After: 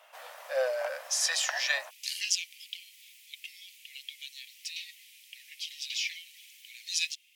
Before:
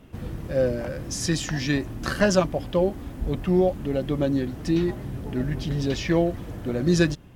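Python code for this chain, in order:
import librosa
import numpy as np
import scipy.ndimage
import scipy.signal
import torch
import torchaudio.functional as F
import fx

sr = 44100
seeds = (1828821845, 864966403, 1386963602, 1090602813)

y = fx.steep_highpass(x, sr, hz=fx.steps((0.0, 570.0), (1.89, 2200.0)), slope=72)
y = y * 10.0 ** (2.5 / 20.0)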